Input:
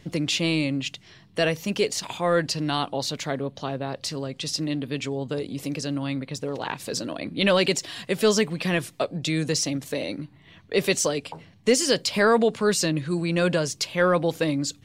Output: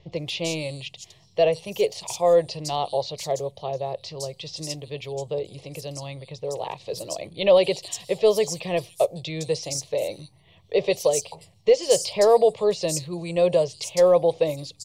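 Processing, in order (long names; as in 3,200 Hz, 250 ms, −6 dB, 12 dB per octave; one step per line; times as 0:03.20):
phaser with its sweep stopped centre 620 Hz, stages 4
dynamic equaliser 570 Hz, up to +7 dB, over −36 dBFS, Q 1.1
multiband delay without the direct sound lows, highs 160 ms, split 4,800 Hz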